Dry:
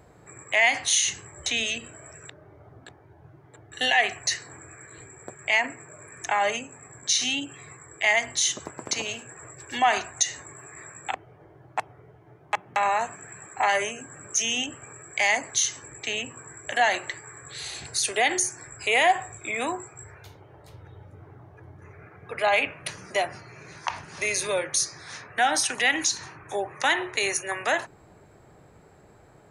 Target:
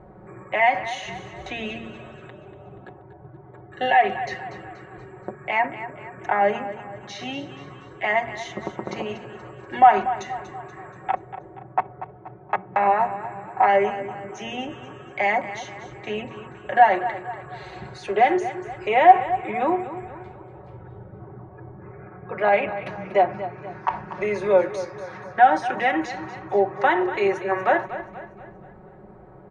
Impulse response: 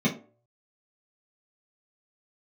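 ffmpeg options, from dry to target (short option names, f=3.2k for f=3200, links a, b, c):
-filter_complex "[0:a]lowpass=1.1k,aecho=1:1:5.4:0.65,aecho=1:1:239|478|717|956|1195:0.224|0.105|0.0495|0.0232|0.0109,asplit=2[a][b];[1:a]atrim=start_sample=2205[c];[b][c]afir=irnorm=-1:irlink=0,volume=-30.5dB[d];[a][d]amix=inputs=2:normalize=0,volume=7dB"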